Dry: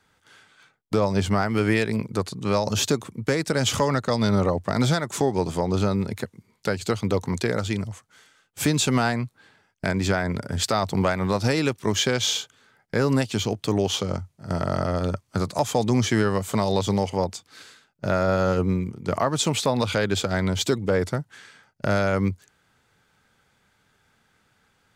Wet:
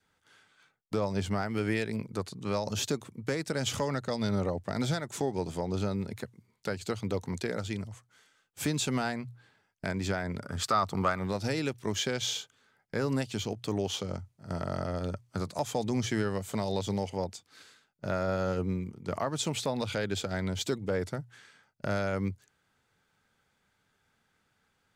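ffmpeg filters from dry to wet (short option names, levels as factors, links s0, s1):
-filter_complex "[0:a]asettb=1/sr,asplit=3[s0][s1][s2];[s0]atrim=end=10.424[s3];[s1]atrim=start=10.42:end=11.19,asetpts=PTS-STARTPTS,afade=t=in:d=0.004:c=qsin,afade=t=out:st=0.766:d=0.004:c=qsin,equalizer=f=1200:w=3.5:g=14.5[s4];[s2]atrim=start=11.186[s5];[s3][s4]acrossfade=d=0.004:c1=hsin:c2=qsin[s6];[s6][s5]acrossfade=d=0.004:c1=qsin:c2=hsin,bandreject=f=60:t=h:w=6,bandreject=f=120:t=h:w=6,adynamicequalizer=threshold=0.00562:dfrequency=1100:dqfactor=3.7:tfrequency=1100:tqfactor=3.7:attack=5:release=100:ratio=0.375:range=3:mode=cutabove:tftype=bell,volume=0.376"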